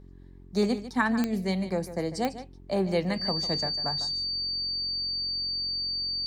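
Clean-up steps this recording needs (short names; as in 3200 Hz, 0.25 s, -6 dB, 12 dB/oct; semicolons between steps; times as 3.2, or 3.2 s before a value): de-click; de-hum 45 Hz, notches 9; notch 4600 Hz, Q 30; inverse comb 0.149 s -13 dB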